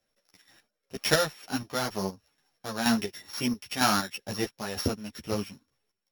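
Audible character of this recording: a buzz of ramps at a fixed pitch in blocks of 8 samples; chopped level 2.1 Hz, depth 60%, duty 40%; a shimmering, thickened sound

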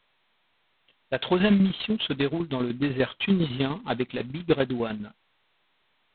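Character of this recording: a quantiser's noise floor 12-bit, dither triangular; tremolo saw down 10 Hz, depth 65%; G.726

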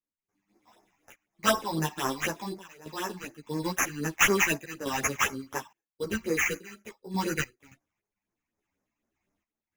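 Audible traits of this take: aliases and images of a low sample rate 4.4 kHz, jitter 0%; phasing stages 8, 4 Hz, lowest notch 410–3500 Hz; random-step tremolo, depth 95%; a shimmering, thickened sound

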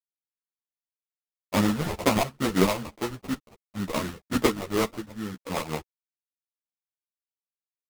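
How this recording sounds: a quantiser's noise floor 10-bit, dither none; phasing stages 12, 2.1 Hz, lowest notch 280–4200 Hz; aliases and images of a low sample rate 1.6 kHz, jitter 20%; a shimmering, thickened sound

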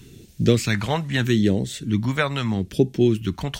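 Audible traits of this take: phasing stages 2, 0.77 Hz, lowest notch 320–1100 Hz

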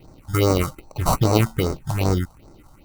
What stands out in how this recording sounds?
aliases and images of a low sample rate 1.7 kHz, jitter 0%; phasing stages 4, 2.5 Hz, lowest notch 360–3000 Hz

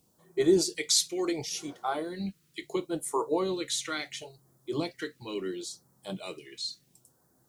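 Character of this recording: a quantiser's noise floor 12-bit, dither triangular; phasing stages 2, 0.72 Hz, lowest notch 730–2600 Hz

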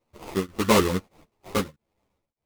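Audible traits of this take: aliases and images of a low sample rate 1.6 kHz, jitter 20%; tremolo triangle 1.6 Hz, depth 100%; a shimmering, thickened sound

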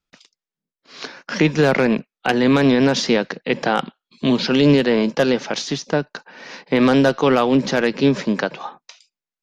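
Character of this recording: noise floor -91 dBFS; spectral tilt -4.5 dB/octave

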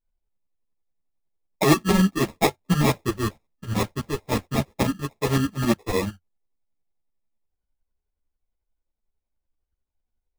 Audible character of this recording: tremolo saw up 11 Hz, depth 70%; aliases and images of a low sample rate 1.5 kHz, jitter 0%; a shimmering, thickened sound

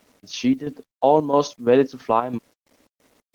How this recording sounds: chopped level 3 Hz, depth 60%, duty 60%; a quantiser's noise floor 10-bit, dither none; Opus

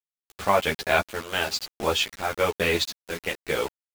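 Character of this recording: tremolo saw up 0.98 Hz, depth 75%; a quantiser's noise floor 6-bit, dither none; a shimmering, thickened sound

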